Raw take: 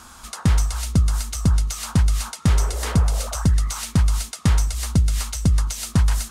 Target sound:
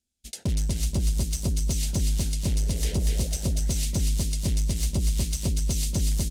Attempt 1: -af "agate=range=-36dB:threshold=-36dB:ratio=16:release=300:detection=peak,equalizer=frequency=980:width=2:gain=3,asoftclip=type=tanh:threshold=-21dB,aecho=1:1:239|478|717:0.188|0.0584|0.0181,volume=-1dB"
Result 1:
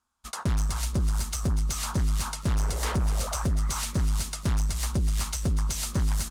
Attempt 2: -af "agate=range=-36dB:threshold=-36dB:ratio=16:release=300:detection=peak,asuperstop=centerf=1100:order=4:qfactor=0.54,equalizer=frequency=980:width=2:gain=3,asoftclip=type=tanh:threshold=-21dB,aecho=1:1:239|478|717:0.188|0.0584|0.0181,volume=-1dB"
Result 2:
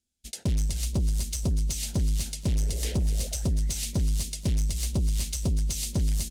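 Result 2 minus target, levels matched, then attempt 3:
echo-to-direct −11.5 dB
-af "agate=range=-36dB:threshold=-36dB:ratio=16:release=300:detection=peak,asuperstop=centerf=1100:order=4:qfactor=0.54,equalizer=frequency=980:width=2:gain=3,asoftclip=type=tanh:threshold=-21dB,aecho=1:1:239|478|717|956:0.708|0.219|0.068|0.0211,volume=-1dB"

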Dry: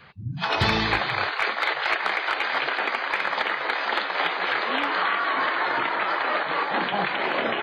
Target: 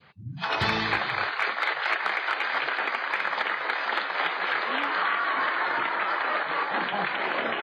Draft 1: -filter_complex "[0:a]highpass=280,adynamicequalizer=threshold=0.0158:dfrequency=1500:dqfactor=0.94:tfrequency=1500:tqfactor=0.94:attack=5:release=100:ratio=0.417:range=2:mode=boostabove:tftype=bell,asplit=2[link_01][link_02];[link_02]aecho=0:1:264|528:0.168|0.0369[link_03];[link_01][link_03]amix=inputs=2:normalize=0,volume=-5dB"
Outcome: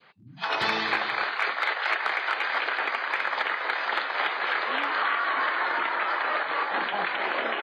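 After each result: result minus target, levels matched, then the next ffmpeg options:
125 Hz band −12.0 dB; echo-to-direct +9 dB
-filter_complex "[0:a]highpass=87,adynamicequalizer=threshold=0.0158:dfrequency=1500:dqfactor=0.94:tfrequency=1500:tqfactor=0.94:attack=5:release=100:ratio=0.417:range=2:mode=boostabove:tftype=bell,asplit=2[link_01][link_02];[link_02]aecho=0:1:264|528:0.168|0.0369[link_03];[link_01][link_03]amix=inputs=2:normalize=0,volume=-5dB"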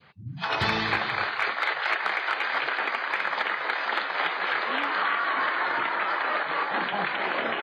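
echo-to-direct +9 dB
-filter_complex "[0:a]highpass=87,adynamicequalizer=threshold=0.0158:dfrequency=1500:dqfactor=0.94:tfrequency=1500:tqfactor=0.94:attack=5:release=100:ratio=0.417:range=2:mode=boostabove:tftype=bell,asplit=2[link_01][link_02];[link_02]aecho=0:1:264|528:0.0596|0.0131[link_03];[link_01][link_03]amix=inputs=2:normalize=0,volume=-5dB"

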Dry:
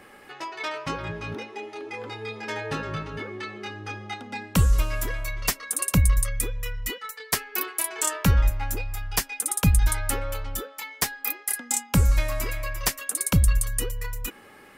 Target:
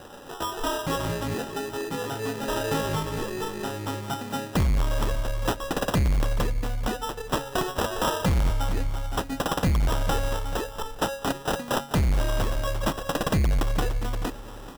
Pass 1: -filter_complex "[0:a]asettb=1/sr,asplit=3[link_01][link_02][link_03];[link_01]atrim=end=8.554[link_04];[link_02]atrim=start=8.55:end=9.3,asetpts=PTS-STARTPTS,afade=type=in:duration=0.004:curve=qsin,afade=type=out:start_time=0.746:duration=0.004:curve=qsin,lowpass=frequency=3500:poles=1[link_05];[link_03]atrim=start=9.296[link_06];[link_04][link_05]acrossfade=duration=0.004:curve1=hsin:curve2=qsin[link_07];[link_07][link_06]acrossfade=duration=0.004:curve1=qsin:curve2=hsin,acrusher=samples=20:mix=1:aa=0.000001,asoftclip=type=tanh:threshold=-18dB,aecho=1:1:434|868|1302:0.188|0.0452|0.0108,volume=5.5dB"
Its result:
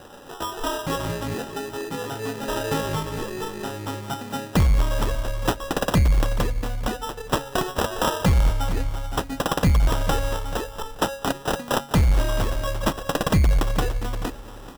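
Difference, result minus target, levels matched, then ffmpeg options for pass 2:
soft clipping: distortion −6 dB
-filter_complex "[0:a]asettb=1/sr,asplit=3[link_01][link_02][link_03];[link_01]atrim=end=8.554[link_04];[link_02]atrim=start=8.55:end=9.3,asetpts=PTS-STARTPTS,afade=type=in:duration=0.004:curve=qsin,afade=type=out:start_time=0.746:duration=0.004:curve=qsin,lowpass=frequency=3500:poles=1[link_05];[link_03]atrim=start=9.296[link_06];[link_04][link_05]acrossfade=duration=0.004:curve1=hsin:curve2=qsin[link_07];[link_07][link_06]acrossfade=duration=0.004:curve1=qsin:curve2=hsin,acrusher=samples=20:mix=1:aa=0.000001,asoftclip=type=tanh:threshold=-24.5dB,aecho=1:1:434|868|1302:0.188|0.0452|0.0108,volume=5.5dB"

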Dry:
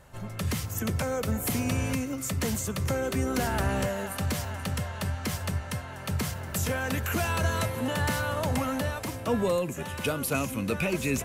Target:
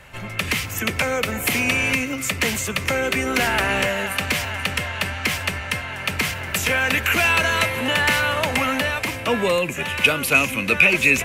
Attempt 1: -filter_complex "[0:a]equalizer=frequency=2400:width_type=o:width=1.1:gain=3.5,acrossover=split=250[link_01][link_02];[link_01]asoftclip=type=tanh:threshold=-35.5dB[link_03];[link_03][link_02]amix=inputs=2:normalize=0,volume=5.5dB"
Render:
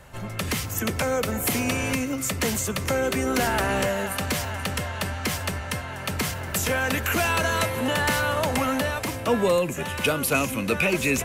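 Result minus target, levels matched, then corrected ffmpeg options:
2,000 Hz band −3.5 dB
-filter_complex "[0:a]equalizer=frequency=2400:width_type=o:width=1.1:gain=14.5,acrossover=split=250[link_01][link_02];[link_01]asoftclip=type=tanh:threshold=-35.5dB[link_03];[link_03][link_02]amix=inputs=2:normalize=0,volume=5.5dB"

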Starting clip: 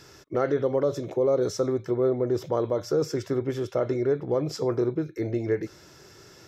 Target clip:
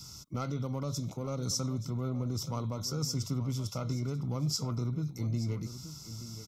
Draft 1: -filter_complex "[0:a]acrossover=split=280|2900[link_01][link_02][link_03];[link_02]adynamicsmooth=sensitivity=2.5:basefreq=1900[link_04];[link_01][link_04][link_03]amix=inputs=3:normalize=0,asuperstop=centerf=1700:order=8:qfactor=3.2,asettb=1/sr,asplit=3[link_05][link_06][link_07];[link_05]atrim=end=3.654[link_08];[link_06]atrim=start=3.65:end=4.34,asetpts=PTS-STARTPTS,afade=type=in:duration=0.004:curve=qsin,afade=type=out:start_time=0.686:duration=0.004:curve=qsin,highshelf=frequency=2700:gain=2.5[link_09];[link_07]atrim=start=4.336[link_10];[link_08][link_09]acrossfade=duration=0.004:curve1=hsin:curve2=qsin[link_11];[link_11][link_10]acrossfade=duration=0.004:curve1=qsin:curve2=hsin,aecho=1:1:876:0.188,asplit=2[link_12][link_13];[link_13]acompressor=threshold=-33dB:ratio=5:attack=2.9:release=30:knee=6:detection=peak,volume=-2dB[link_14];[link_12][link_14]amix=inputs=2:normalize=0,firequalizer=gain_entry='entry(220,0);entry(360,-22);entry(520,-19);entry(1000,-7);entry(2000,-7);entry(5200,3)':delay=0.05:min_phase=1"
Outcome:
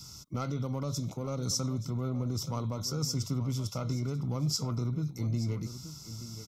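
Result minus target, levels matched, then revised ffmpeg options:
downward compressor: peak gain reduction −5.5 dB
-filter_complex "[0:a]acrossover=split=280|2900[link_01][link_02][link_03];[link_02]adynamicsmooth=sensitivity=2.5:basefreq=1900[link_04];[link_01][link_04][link_03]amix=inputs=3:normalize=0,asuperstop=centerf=1700:order=8:qfactor=3.2,asettb=1/sr,asplit=3[link_05][link_06][link_07];[link_05]atrim=end=3.654[link_08];[link_06]atrim=start=3.65:end=4.34,asetpts=PTS-STARTPTS,afade=type=in:duration=0.004:curve=qsin,afade=type=out:start_time=0.686:duration=0.004:curve=qsin,highshelf=frequency=2700:gain=2.5[link_09];[link_07]atrim=start=4.336[link_10];[link_08][link_09]acrossfade=duration=0.004:curve1=hsin:curve2=qsin[link_11];[link_11][link_10]acrossfade=duration=0.004:curve1=qsin:curve2=hsin,aecho=1:1:876:0.188,asplit=2[link_12][link_13];[link_13]acompressor=threshold=-40dB:ratio=5:attack=2.9:release=30:knee=6:detection=peak,volume=-2dB[link_14];[link_12][link_14]amix=inputs=2:normalize=0,firequalizer=gain_entry='entry(220,0);entry(360,-22);entry(520,-19);entry(1000,-7);entry(2000,-7);entry(5200,3)':delay=0.05:min_phase=1"

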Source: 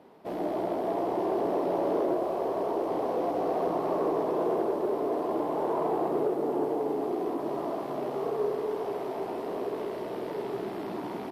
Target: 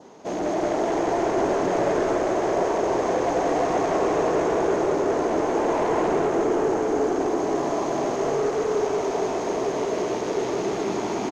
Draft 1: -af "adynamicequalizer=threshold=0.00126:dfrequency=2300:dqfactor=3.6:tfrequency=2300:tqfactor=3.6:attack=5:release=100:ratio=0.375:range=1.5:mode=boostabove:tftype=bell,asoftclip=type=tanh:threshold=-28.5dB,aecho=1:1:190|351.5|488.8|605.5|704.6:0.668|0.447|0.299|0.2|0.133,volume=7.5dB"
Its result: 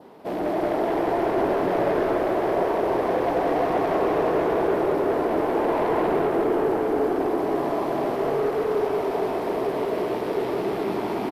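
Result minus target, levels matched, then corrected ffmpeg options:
8,000 Hz band −13.5 dB
-af "adynamicequalizer=threshold=0.00126:dfrequency=2300:dqfactor=3.6:tfrequency=2300:tqfactor=3.6:attack=5:release=100:ratio=0.375:range=1.5:mode=boostabove:tftype=bell,lowpass=frequency=6500:width_type=q:width=16,asoftclip=type=tanh:threshold=-28.5dB,aecho=1:1:190|351.5|488.8|605.5|704.6:0.668|0.447|0.299|0.2|0.133,volume=7.5dB"

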